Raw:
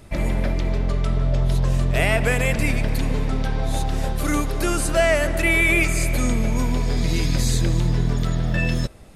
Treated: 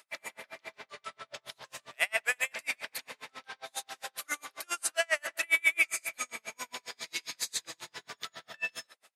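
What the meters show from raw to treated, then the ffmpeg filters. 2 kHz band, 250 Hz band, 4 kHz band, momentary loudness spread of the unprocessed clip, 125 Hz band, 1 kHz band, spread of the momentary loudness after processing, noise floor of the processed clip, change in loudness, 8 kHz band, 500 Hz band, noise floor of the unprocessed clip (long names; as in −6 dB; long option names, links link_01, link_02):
−7.0 dB, −33.5 dB, −7.0 dB, 6 LU, below −40 dB, −13.0 dB, 17 LU, −78 dBFS, −11.0 dB, −6.5 dB, −18.0 dB, −25 dBFS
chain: -filter_complex "[0:a]highpass=1200,asplit=2[link_01][link_02];[link_02]adelay=80,highpass=300,lowpass=3400,asoftclip=type=hard:threshold=-19.5dB,volume=-15dB[link_03];[link_01][link_03]amix=inputs=2:normalize=0,aeval=exprs='val(0)*pow(10,-39*(0.5-0.5*cos(2*PI*7.4*n/s))/20)':channel_layout=same"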